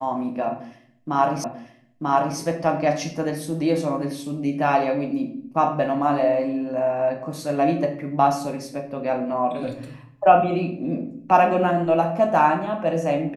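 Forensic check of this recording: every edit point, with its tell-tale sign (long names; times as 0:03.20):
0:01.44: the same again, the last 0.94 s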